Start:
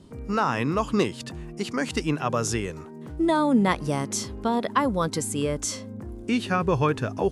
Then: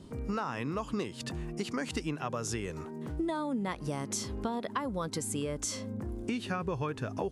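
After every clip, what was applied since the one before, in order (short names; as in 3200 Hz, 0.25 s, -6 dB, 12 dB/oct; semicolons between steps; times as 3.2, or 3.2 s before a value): compressor 6:1, threshold -31 dBFS, peak gain reduction 14.5 dB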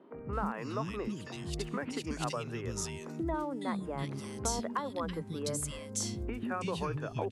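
three bands offset in time mids, lows, highs 0.14/0.33 s, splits 280/2200 Hz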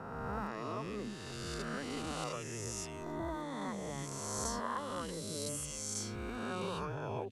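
spectral swells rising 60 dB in 2.18 s; gain -8.5 dB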